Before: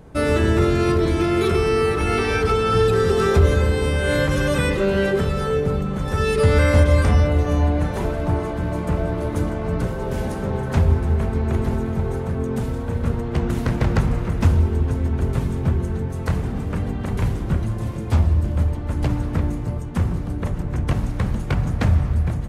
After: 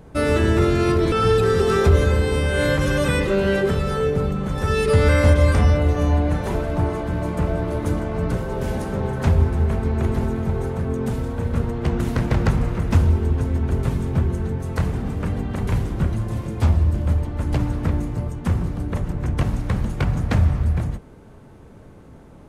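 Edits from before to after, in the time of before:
1.12–2.62 s: delete

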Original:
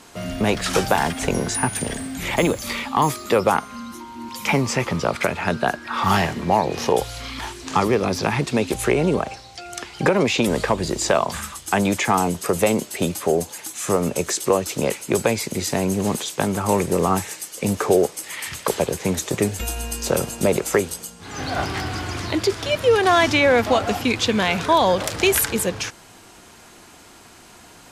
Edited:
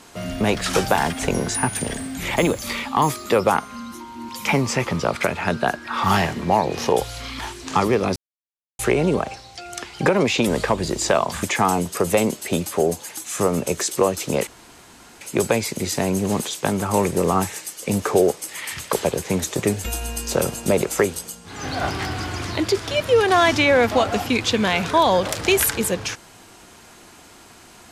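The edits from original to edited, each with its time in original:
8.16–8.79 s: mute
11.43–11.92 s: delete
14.96 s: insert room tone 0.74 s

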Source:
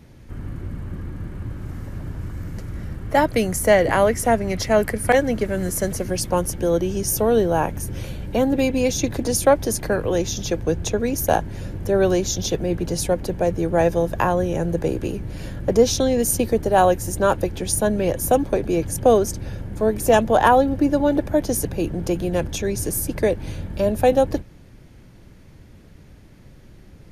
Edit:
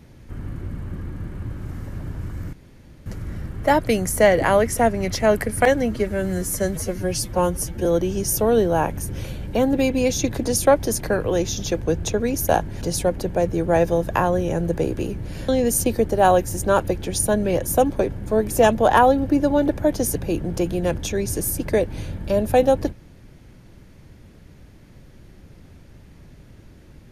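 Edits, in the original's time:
2.53 s: insert room tone 0.53 s
5.30–6.65 s: stretch 1.5×
11.61–12.86 s: delete
15.53–16.02 s: delete
18.64–19.60 s: delete

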